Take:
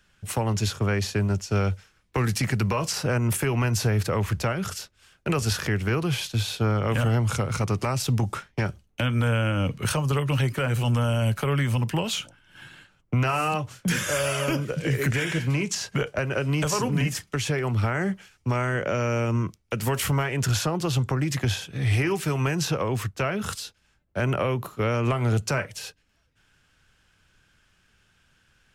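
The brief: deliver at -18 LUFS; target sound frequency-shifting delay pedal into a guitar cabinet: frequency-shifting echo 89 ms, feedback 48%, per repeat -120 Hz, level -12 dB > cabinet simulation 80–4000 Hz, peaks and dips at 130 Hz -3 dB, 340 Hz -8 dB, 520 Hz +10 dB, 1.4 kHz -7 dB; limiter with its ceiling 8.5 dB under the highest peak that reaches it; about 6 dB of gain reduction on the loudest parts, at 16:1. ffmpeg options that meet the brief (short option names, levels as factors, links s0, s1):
-filter_complex "[0:a]acompressor=threshold=0.0562:ratio=16,alimiter=limit=0.0631:level=0:latency=1,asplit=6[s0][s1][s2][s3][s4][s5];[s1]adelay=89,afreqshift=-120,volume=0.251[s6];[s2]adelay=178,afreqshift=-240,volume=0.12[s7];[s3]adelay=267,afreqshift=-360,volume=0.0575[s8];[s4]adelay=356,afreqshift=-480,volume=0.0279[s9];[s5]adelay=445,afreqshift=-600,volume=0.0133[s10];[s0][s6][s7][s8][s9][s10]amix=inputs=6:normalize=0,highpass=80,equalizer=f=130:t=q:w=4:g=-3,equalizer=f=340:t=q:w=4:g=-8,equalizer=f=520:t=q:w=4:g=10,equalizer=f=1400:t=q:w=4:g=-7,lowpass=f=4000:w=0.5412,lowpass=f=4000:w=1.3066,volume=5.96"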